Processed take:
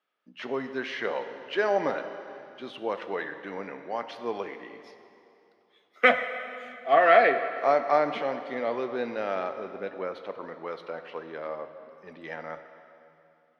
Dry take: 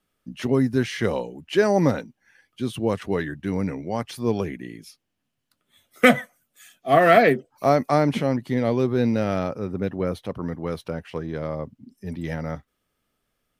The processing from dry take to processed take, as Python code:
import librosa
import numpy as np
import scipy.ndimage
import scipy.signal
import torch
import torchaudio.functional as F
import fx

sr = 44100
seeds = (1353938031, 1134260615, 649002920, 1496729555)

y = scipy.signal.sosfilt(scipy.signal.butter(2, 610.0, 'highpass', fs=sr, output='sos'), x)
y = fx.air_absorb(y, sr, metres=250.0)
y = fx.rev_plate(y, sr, seeds[0], rt60_s=2.8, hf_ratio=0.85, predelay_ms=0, drr_db=8.0)